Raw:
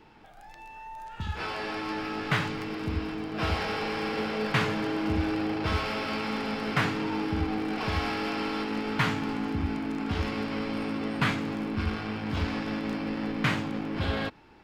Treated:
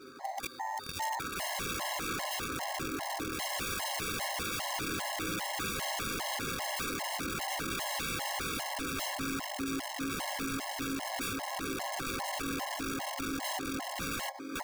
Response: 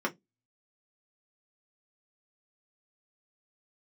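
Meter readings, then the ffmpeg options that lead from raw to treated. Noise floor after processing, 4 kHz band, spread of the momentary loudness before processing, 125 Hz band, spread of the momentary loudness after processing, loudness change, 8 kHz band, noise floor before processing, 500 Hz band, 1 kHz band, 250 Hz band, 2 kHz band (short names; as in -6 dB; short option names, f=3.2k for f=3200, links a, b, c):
-42 dBFS, -0.5 dB, 5 LU, -13.5 dB, 2 LU, -4.5 dB, +13.5 dB, -50 dBFS, -7.5 dB, -2.5 dB, -9.5 dB, -4.0 dB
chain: -filter_complex "[0:a]aecho=1:1:7.5:0.6,aecho=1:1:1113|2226|3339|4452|5565|6678:0.178|0.105|0.0619|0.0365|0.0215|0.0127,aeval=exprs='val(0)+0.00316*(sin(2*PI*50*n/s)+sin(2*PI*2*50*n/s)/2+sin(2*PI*3*50*n/s)/3+sin(2*PI*4*50*n/s)/4+sin(2*PI*5*50*n/s)/5)':c=same,acrusher=samples=16:mix=1:aa=0.000001,acontrast=30,asplit=2[a][b];[1:a]atrim=start_sample=2205,asetrate=48510,aresample=44100,lowpass=7.7k[c];[b][c]afir=irnorm=-1:irlink=0,volume=-7.5dB[d];[a][d]amix=inputs=2:normalize=0,acompressor=threshold=-30dB:ratio=3,highpass=350,equalizer=f=790:t=q:w=4:g=10,equalizer=f=3.1k:t=q:w=4:g=-4,equalizer=f=4.8k:t=q:w=4:g=8,lowpass=f=8.5k:w=0.5412,lowpass=f=8.5k:w=1.3066,acrusher=bits=5:mode=log:mix=0:aa=0.000001,aeval=exprs='(mod(23.7*val(0)+1,2)-1)/23.7':c=same,equalizer=f=460:t=o:w=0.36:g=-3,afftfilt=real='re*gt(sin(2*PI*2.5*pts/sr)*(1-2*mod(floor(b*sr/1024/550),2)),0)':imag='im*gt(sin(2*PI*2.5*pts/sr)*(1-2*mod(floor(b*sr/1024/550),2)),0)':win_size=1024:overlap=0.75"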